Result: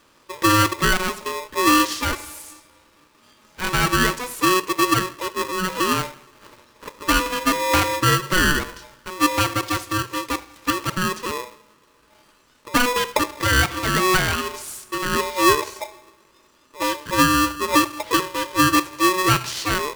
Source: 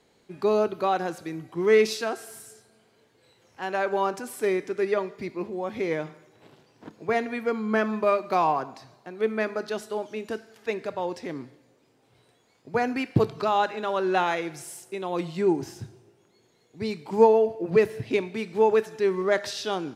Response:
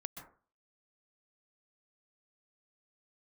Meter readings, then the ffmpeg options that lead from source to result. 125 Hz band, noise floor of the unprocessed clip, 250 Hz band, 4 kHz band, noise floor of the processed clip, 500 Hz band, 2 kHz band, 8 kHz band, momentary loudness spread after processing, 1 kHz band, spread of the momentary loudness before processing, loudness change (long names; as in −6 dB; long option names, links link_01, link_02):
+9.0 dB, −64 dBFS, +7.0 dB, +15.5 dB, −57 dBFS, −3.0 dB, +11.5 dB, +17.5 dB, 12 LU, +7.5 dB, 15 LU, +6.0 dB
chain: -filter_complex "[0:a]alimiter=limit=-14dB:level=0:latency=1:release=484,asplit=2[link_01][link_02];[1:a]atrim=start_sample=2205,asetrate=83790,aresample=44100[link_03];[link_02][link_03]afir=irnorm=-1:irlink=0,volume=-6.5dB[link_04];[link_01][link_04]amix=inputs=2:normalize=0,aeval=exprs='val(0)*sgn(sin(2*PI*740*n/s))':channel_layout=same,volume=5.5dB"